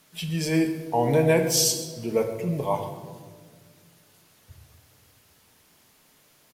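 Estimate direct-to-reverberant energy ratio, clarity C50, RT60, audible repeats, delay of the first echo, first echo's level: 5.0 dB, 8.0 dB, 1.7 s, 1, 133 ms, −16.5 dB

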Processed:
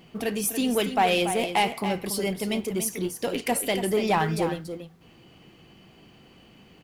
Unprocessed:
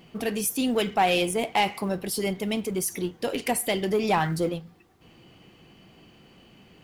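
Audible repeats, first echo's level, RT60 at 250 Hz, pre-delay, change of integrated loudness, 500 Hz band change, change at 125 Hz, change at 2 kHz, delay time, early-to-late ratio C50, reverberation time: 1, −9.5 dB, no reverb audible, no reverb audible, +0.5 dB, +0.5 dB, 0.0 dB, +0.5 dB, 284 ms, no reverb audible, no reverb audible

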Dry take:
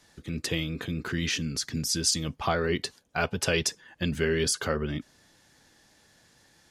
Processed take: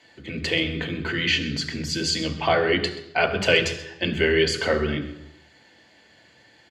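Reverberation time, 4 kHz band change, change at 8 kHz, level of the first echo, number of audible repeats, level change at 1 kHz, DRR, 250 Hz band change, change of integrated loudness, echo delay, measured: 0.85 s, +6.5 dB, −5.0 dB, −16.0 dB, 1, +6.0 dB, 5.0 dB, +4.0 dB, +5.5 dB, 129 ms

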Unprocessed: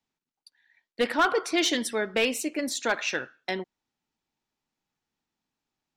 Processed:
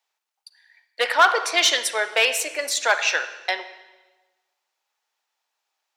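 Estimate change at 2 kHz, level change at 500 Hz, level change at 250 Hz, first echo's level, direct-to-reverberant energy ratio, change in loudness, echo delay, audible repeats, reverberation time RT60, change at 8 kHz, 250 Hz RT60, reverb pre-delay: +8.5 dB, +2.0 dB, −13.5 dB, no echo audible, 11.5 dB, +6.5 dB, no echo audible, no echo audible, 1.2 s, +8.0 dB, 1.3 s, 38 ms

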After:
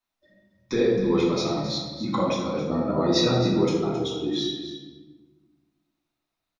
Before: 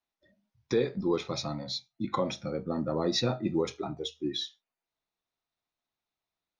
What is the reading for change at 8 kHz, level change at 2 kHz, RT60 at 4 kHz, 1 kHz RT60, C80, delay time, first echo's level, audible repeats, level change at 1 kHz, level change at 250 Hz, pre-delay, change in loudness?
can't be measured, +7.0 dB, 1.0 s, 1.3 s, 3.5 dB, 267 ms, −11.5 dB, 1, +6.5 dB, +8.5 dB, 3 ms, +7.5 dB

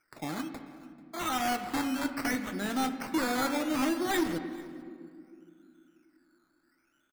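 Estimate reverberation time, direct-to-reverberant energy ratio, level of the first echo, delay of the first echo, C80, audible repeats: 2.3 s, 8.0 dB, −22.0 dB, 439 ms, 10.5 dB, 1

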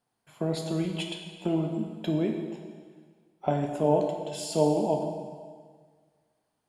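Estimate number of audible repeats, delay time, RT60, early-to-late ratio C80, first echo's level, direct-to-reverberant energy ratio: no echo audible, no echo audible, 1.7 s, 6.0 dB, no echo audible, 2.5 dB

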